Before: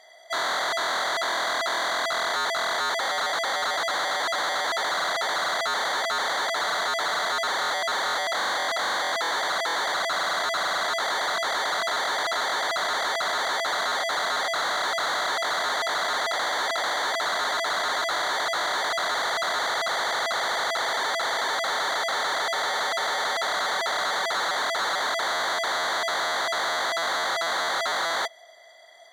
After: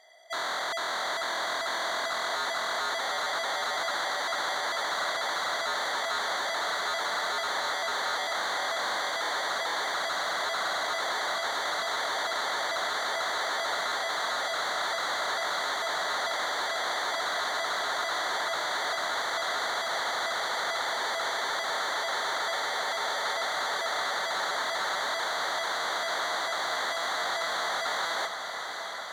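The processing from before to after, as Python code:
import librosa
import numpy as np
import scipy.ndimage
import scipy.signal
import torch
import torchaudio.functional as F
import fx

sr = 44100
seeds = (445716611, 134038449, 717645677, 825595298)

y = fx.echo_diffused(x, sr, ms=649, feedback_pct=75, wet_db=-8)
y = y * 10.0 ** (-5.5 / 20.0)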